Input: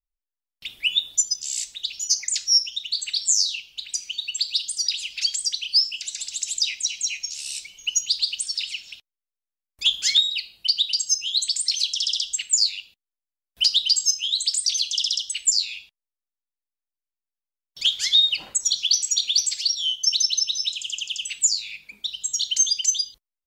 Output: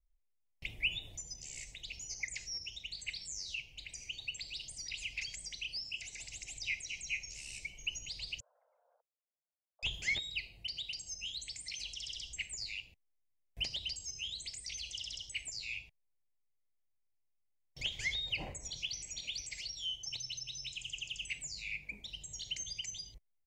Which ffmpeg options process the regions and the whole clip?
-filter_complex "[0:a]asettb=1/sr,asplit=3[s0][s1][s2];[s0]atrim=end=8.404[s3];[s1]atrim=start=8.4:end=9.83,asetpts=PTS-STARTPTS,afade=t=in:d=0.004:c=qsin,afade=t=out:st=1.426:d=0.004:c=qsin,asuperpass=centerf=830:order=20:qfactor=0.82,afreqshift=20[s4];[s2]atrim=start=9.826[s5];[s3][s4]acrossfade=d=0.004:c1=hsin:c2=qsin[s6];[s6][s5]acrossfade=d=0.004:c1=qsin:c2=hsin,firequalizer=gain_entry='entry(110,0);entry(200,-11);entry(670,-10);entry(1400,-28);entry(2100,-10);entry(3500,-29);entry(6400,-17);entry(12000,-20)':delay=0.05:min_phase=1,acrossover=split=2900[s7][s8];[s8]acompressor=threshold=0.00224:ratio=4:attack=1:release=60[s9];[s7][s9]amix=inputs=2:normalize=0,highshelf=f=8000:g=-9.5,volume=4.22"

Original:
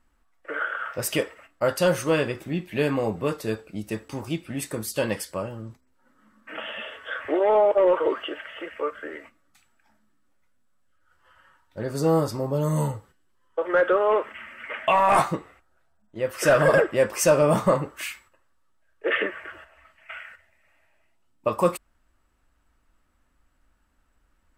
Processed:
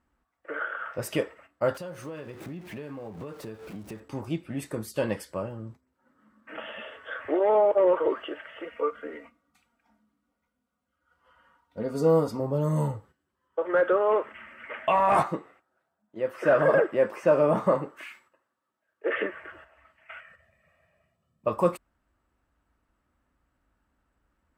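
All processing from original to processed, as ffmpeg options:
-filter_complex "[0:a]asettb=1/sr,asplit=3[s0][s1][s2];[s0]atrim=end=1.744[s3];[s1]atrim=start=1.74:end=4,asetpts=PTS-STARTPTS,afade=t=in:d=0.004:c=qsin,afade=t=out:st=2.256:d=0.004:c=qsin,aeval=exprs='val(0)+0.5*0.0211*sgn(val(0))':c=same,acompressor=threshold=0.0224:ratio=8:attack=3.2:release=140:knee=1:detection=peak,agate=range=0.0224:threshold=0.0141:ratio=3:release=100:detection=peak[s4];[s2]atrim=start=3.996[s5];[s3][s4]acrossfade=d=0.004:c1=hsin:c2=qsin[s6];[s6][s5]acrossfade=d=0.004:c1=qsin:c2=hsin,asettb=1/sr,asplit=3[s7][s8][s9];[s7]atrim=end=8.644[s10];[s8]atrim=start=8.64:end=12.4,asetpts=PTS-STARTPTS,afade=t=in:d=0.004:c=qsin,afade=t=out:st=3.756:d=0.004:c=qsin,bandreject=f=1700:w=7.4,aecho=1:1:4.2:0.59,atrim=end_sample=165816[s11];[s9]atrim=start=12.396[s12];[s10][s11]acrossfade=d=0.004:c1=hsin:c2=qsin[s13];[s13][s12]acrossfade=d=0.004:c1=qsin:c2=hsin,asettb=1/sr,asplit=3[s14][s15][s16];[s14]atrim=end=15.234[s17];[s15]atrim=start=15.23:end=19.17,asetpts=PTS-STARTPTS,afade=t=in:d=0.004:c=qsin,afade=t=out:st=3.936:d=0.004:c=qsin,highpass=190,acrossover=split=2700[s18][s19];[s19]acompressor=threshold=0.00501:ratio=4:attack=1:release=60[s20];[s18][s20]amix=inputs=2:normalize=0[s21];[s16]atrim=start=19.166[s22];[s17][s21]acrossfade=d=0.004:c1=hsin:c2=qsin[s23];[s23][s22]acrossfade=d=0.004:c1=qsin:c2=hsin,asettb=1/sr,asplit=3[s24][s25][s26];[s24]atrim=end=20.204[s27];[s25]atrim=start=20.2:end=21.47,asetpts=PTS-STARTPTS,afade=t=in:d=0.004:c=qsin,afade=t=out:st=1.266:d=0.004:c=qsin,equalizer=f=170:w=1:g=12,aecho=1:1:1.7:0.78,atrim=end_sample=56007,acompressor=threshold=0.00224:ratio=1.5:attack=3.2:release=140:knee=1:detection=peak[s28];[s26]atrim=start=21.466[s29];[s27][s28]acrossfade=d=0.004:c1=hsin:c2=qsin[s30];[s30][s29]acrossfade=d=0.004:c1=qsin:c2=hsin,highpass=55,highshelf=f=2300:g=-9.5,volume=0.841"

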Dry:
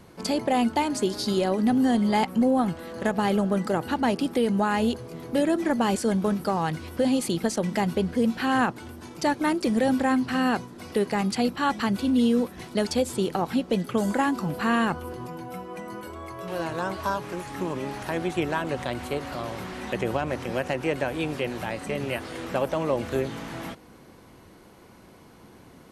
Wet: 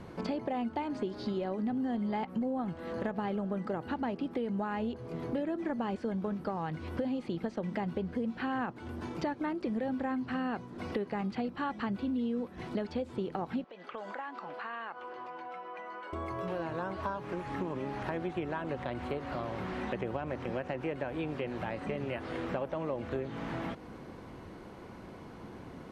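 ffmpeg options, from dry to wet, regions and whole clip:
-filter_complex "[0:a]asettb=1/sr,asplit=3[s0][s1][s2];[s0]atrim=end=13.644[s3];[s1]atrim=start=13.64:end=16.13,asetpts=PTS-STARTPTS,afade=t=in:d=0.004:c=qsin,afade=t=out:st=2.486:d=0.004:c=qsin,highpass=760,lowpass=3400,acompressor=threshold=0.00708:ratio=3:attack=3.2:release=140:knee=1:detection=peak[s4];[s2]atrim=start=16.126[s5];[s3][s4]acrossfade=d=0.004:c1=hsin:c2=qsin[s6];[s6][s5]acrossfade=d=0.004:c1=qsin:c2=hsin,acrossover=split=4200[s7][s8];[s8]acompressor=threshold=0.00251:ratio=4:attack=1:release=60[s9];[s7][s9]amix=inputs=2:normalize=0,aemphasis=mode=reproduction:type=75fm,acompressor=threshold=0.0141:ratio=4,volume=1.41"

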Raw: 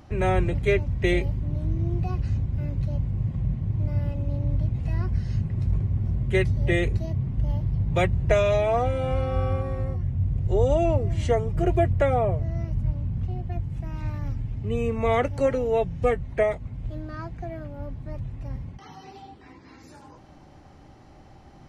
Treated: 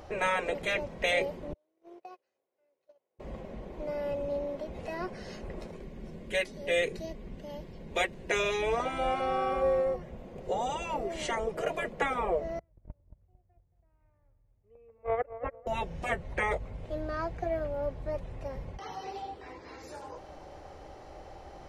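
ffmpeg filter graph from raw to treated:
-filter_complex "[0:a]asettb=1/sr,asplit=3[s0][s1][s2];[s0]atrim=end=1.534[s3];[s1]atrim=start=1.53:end=3.2,asetpts=PTS-STARTPTS,afade=t=in:d=0.004:c=qsin,afade=t=out:st=1.666:d=0.004:c=qsin,highpass=f=350:w=0.5412,highpass=f=350:w=1.3066,agate=range=0.0126:threshold=0.0126:ratio=16:release=100:detection=peak,acompressor=threshold=0.00355:ratio=6:attack=3.2:release=140:knee=1:detection=peak[s4];[s2]atrim=start=3.196[s5];[s3][s4]acrossfade=d=0.004:c1=hsin:c2=qsin[s6];[s6][s5]acrossfade=d=0.004:c1=qsin:c2=hsin,asettb=1/sr,asplit=3[s7][s8][s9];[s7]atrim=end=5.714[s10];[s8]atrim=start=5.71:end=8.8,asetpts=PTS-STARTPTS,afade=t=in:d=0.004:c=qsin,afade=t=out:st=3.086:d=0.004:c=qsin,equalizer=f=750:w=0.77:g=-9.5,bandreject=f=1300:w=12[s11];[s9]atrim=start=8.796[s12];[s10][s11]acrossfade=d=0.004:c1=hsin:c2=qsin[s13];[s13][s12]acrossfade=d=0.004:c1=qsin:c2=hsin,asettb=1/sr,asplit=3[s14][s15][s16];[s14]atrim=end=12.594[s17];[s15]atrim=start=12.59:end=15.67,asetpts=PTS-STARTPTS,afade=t=in:d=0.004:c=qsin,afade=t=out:st=3.076:d=0.004:c=qsin,agate=range=0.0126:threshold=0.112:ratio=16:release=100:detection=peak,lowpass=f=2300:w=0.5412,lowpass=f=2300:w=1.3066,asplit=2[s18][s19];[s19]adelay=225,lowpass=f=1200:p=1,volume=0.251,asplit=2[s20][s21];[s21]adelay=225,lowpass=f=1200:p=1,volume=0.29,asplit=2[s22][s23];[s23]adelay=225,lowpass=f=1200:p=1,volume=0.29[s24];[s18][s20][s22][s24]amix=inputs=4:normalize=0,atrim=end_sample=135828[s25];[s16]atrim=start=15.666[s26];[s17][s25]acrossfade=d=0.004:c1=hsin:c2=qsin[s27];[s27][s26]acrossfade=d=0.004:c1=qsin:c2=hsin,afftfilt=real='re*lt(hypot(re,im),0.224)':imag='im*lt(hypot(re,im),0.224)':win_size=1024:overlap=0.75,equalizer=f=125:t=o:w=1:g=-9,equalizer=f=250:t=o:w=1:g=-9,equalizer=f=500:t=o:w=1:g=10,volume=1.33"

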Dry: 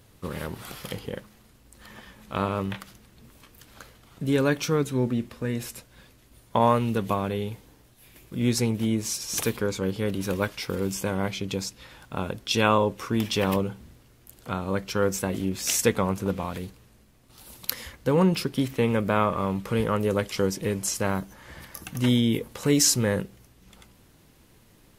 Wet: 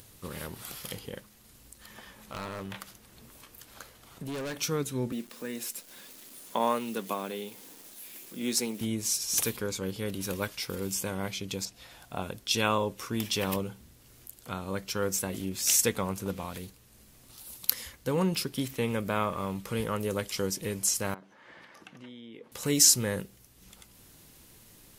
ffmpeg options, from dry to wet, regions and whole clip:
-filter_complex "[0:a]asettb=1/sr,asplit=3[s0][s1][s2];[s0]atrim=end=1.984[s3];[s1]atrim=start=1.98:end=4.58,asetpts=PTS-STARTPTS,afade=t=in:d=0.004:c=qsin,afade=t=out:st=2.596:d=0.004:c=qsin,equalizer=f=780:w=0.45:g=5.5,asoftclip=type=hard:threshold=0.0794,acompressor=threshold=0.0398:ratio=6:attack=3.2:release=140:knee=1:detection=peak[s4];[s2]atrim=start=4.576[s5];[s3][s4]acrossfade=d=0.004:c1=hsin:c2=qsin[s6];[s6][s5]acrossfade=d=0.004:c1=qsin:c2=hsin,asettb=1/sr,asplit=3[s7][s8][s9];[s7]atrim=end=5.124[s10];[s8]atrim=start=5.12:end=8.81,asetpts=PTS-STARTPTS,afade=t=in:d=0.004:c=qsin,afade=t=out:st=3.686:d=0.004:c=qsin,highpass=f=200:w=0.5412,highpass=f=200:w=1.3066,acompressor=mode=upward:threshold=0.0126:ratio=2.5:attack=3.2:release=140:knee=2.83:detection=peak,acrusher=bits=9:dc=4:mix=0:aa=0.000001[s11];[s9]atrim=start=8.806[s12];[s10][s11]acrossfade=d=0.004:c1=hsin:c2=qsin[s13];[s13][s12]acrossfade=d=0.004:c1=qsin:c2=hsin,asettb=1/sr,asplit=3[s14][s15][s16];[s14]atrim=end=11.654[s17];[s15]atrim=start=11.65:end=12.22,asetpts=PTS-STARTPTS,afade=t=in:d=0.004:c=qsin,afade=t=out:st=0.566:d=0.004:c=qsin,acrossover=split=4000[s18][s19];[s19]acompressor=threshold=0.00355:ratio=4:attack=1:release=60[s20];[s18][s20]amix=inputs=2:normalize=0,equalizer=f=700:t=o:w=0.25:g=12[s21];[s16]atrim=start=12.216[s22];[s17][s21]acrossfade=d=0.004:c1=hsin:c2=qsin[s23];[s23][s22]acrossfade=d=0.004:c1=qsin:c2=hsin,asettb=1/sr,asplit=3[s24][s25][s26];[s24]atrim=end=21.144[s27];[s25]atrim=start=21.14:end=22.52,asetpts=PTS-STARTPTS,afade=t=in:d=0.004:c=qsin,afade=t=out:st=1.376:d=0.004:c=qsin,acompressor=threshold=0.0224:ratio=6:attack=3.2:release=140:knee=1:detection=peak,highpass=260,lowpass=2500[s28];[s26]atrim=start=22.516[s29];[s27][s28]acrossfade=d=0.004:c1=hsin:c2=qsin[s30];[s30][s29]acrossfade=d=0.004:c1=qsin:c2=hsin,highshelf=f=3800:g=11,acompressor=mode=upward:threshold=0.01:ratio=2.5,volume=0.447"

